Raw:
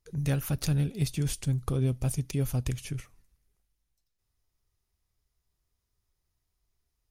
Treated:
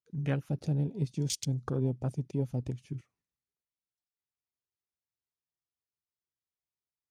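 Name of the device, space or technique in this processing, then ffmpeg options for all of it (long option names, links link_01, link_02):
over-cleaned archive recording: -filter_complex "[0:a]asettb=1/sr,asplit=3[link_01][link_02][link_03];[link_01]atrim=end=1.114[link_04];[link_02]atrim=start=1.11:end=1.7,asetpts=PTS-STARTPTS,afade=type=in:duration=0.004:curve=qsin,afade=type=out:start_time=0.586:duration=0.004:curve=qsin,equalizer=frequency=5900:width_type=o:width=1.3:gain=9.5[link_05];[link_03]atrim=start=1.696[link_06];[link_04][link_05]acrossfade=duration=0.004:curve1=hsin:curve2=qsin[link_07];[link_07][link_06]acrossfade=duration=0.004:curve1=qsin:curve2=hsin,highpass=150,lowpass=6800,afwtdn=0.0112"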